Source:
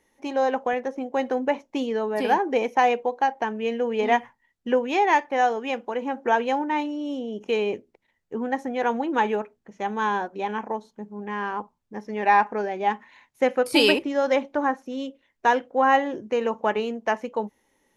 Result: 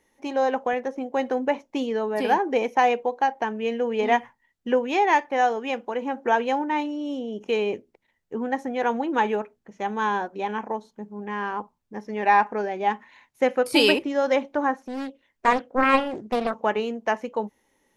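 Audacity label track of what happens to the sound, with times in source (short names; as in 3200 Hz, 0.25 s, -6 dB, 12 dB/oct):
14.790000	16.610000	Doppler distortion depth 0.55 ms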